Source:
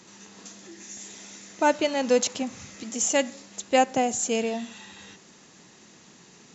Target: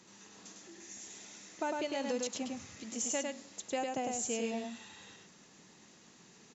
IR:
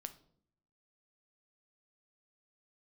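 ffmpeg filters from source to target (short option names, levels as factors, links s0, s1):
-filter_complex "[0:a]acompressor=threshold=0.0631:ratio=6,asplit=2[s0][s1];[s1]aecho=0:1:103:0.668[s2];[s0][s2]amix=inputs=2:normalize=0,volume=0.376"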